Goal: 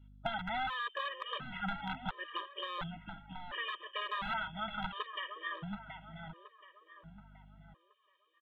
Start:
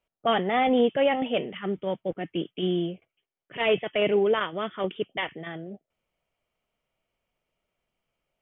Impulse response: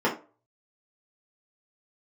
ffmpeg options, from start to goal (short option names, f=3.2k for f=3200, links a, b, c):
-filter_complex "[0:a]acrossover=split=700[a][b];[a]aeval=exprs='(mod(11.2*val(0)+1,2)-1)/11.2':c=same[c];[c][b]amix=inputs=2:normalize=0,firequalizer=gain_entry='entry(150,0);entry(340,-20);entry(890,1);entry(1400,5);entry(2300,-3);entry(3500,12);entry(5100,-21)':delay=0.05:min_phase=1,acompressor=threshold=-35dB:ratio=6,aeval=exprs='val(0)+0.001*(sin(2*PI*50*n/s)+sin(2*PI*2*50*n/s)/2+sin(2*PI*3*50*n/s)/3+sin(2*PI*4*50*n/s)/4+sin(2*PI*5*50*n/s)/5)':c=same,acrossover=split=2500[d][e];[e]acompressor=threshold=-55dB:ratio=4:attack=1:release=60[f];[d][f]amix=inputs=2:normalize=0,asplit=2[g][h];[h]adelay=726,lowpass=f=2.6k:p=1,volume=-8dB,asplit=2[i][j];[j]adelay=726,lowpass=f=2.6k:p=1,volume=0.47,asplit=2[k][l];[l]adelay=726,lowpass=f=2.6k:p=1,volume=0.47,asplit=2[m][n];[n]adelay=726,lowpass=f=2.6k:p=1,volume=0.47,asplit=2[o][p];[p]adelay=726,lowpass=f=2.6k:p=1,volume=0.47[q];[i][k][m][o][q]amix=inputs=5:normalize=0[r];[g][r]amix=inputs=2:normalize=0,afftfilt=real='re*gt(sin(2*PI*0.71*pts/sr)*(1-2*mod(floor(b*sr/1024/320),2)),0)':imag='im*gt(sin(2*PI*0.71*pts/sr)*(1-2*mod(floor(b*sr/1024/320),2)),0)':win_size=1024:overlap=0.75,volume=4.5dB"